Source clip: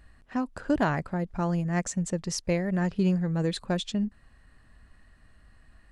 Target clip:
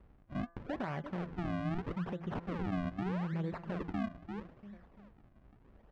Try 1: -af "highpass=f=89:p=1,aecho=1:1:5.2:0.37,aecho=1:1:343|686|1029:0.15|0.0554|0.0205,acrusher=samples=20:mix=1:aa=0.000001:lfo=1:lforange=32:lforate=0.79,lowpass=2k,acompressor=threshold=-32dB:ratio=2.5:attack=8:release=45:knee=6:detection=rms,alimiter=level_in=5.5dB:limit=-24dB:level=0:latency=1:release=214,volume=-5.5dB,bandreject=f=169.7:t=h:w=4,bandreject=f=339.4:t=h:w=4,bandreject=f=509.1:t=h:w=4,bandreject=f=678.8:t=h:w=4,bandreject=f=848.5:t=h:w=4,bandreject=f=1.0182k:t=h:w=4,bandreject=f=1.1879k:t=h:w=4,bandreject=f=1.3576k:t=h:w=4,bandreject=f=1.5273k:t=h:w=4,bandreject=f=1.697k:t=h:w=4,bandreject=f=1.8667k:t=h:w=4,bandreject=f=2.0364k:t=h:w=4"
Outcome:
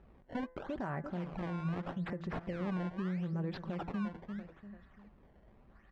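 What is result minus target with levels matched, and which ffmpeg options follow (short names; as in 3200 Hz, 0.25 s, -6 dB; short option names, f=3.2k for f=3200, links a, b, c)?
compressor: peak gain reduction +9 dB; decimation with a swept rate: distortion -10 dB
-af "highpass=f=89:p=1,aecho=1:1:5.2:0.37,aecho=1:1:343|686|1029:0.15|0.0554|0.0205,acrusher=samples=56:mix=1:aa=0.000001:lfo=1:lforange=89.6:lforate=0.79,lowpass=2k,alimiter=level_in=5.5dB:limit=-24dB:level=0:latency=1:release=214,volume=-5.5dB,bandreject=f=169.7:t=h:w=4,bandreject=f=339.4:t=h:w=4,bandreject=f=509.1:t=h:w=4,bandreject=f=678.8:t=h:w=4,bandreject=f=848.5:t=h:w=4,bandreject=f=1.0182k:t=h:w=4,bandreject=f=1.1879k:t=h:w=4,bandreject=f=1.3576k:t=h:w=4,bandreject=f=1.5273k:t=h:w=4,bandreject=f=1.697k:t=h:w=4,bandreject=f=1.8667k:t=h:w=4,bandreject=f=2.0364k:t=h:w=4"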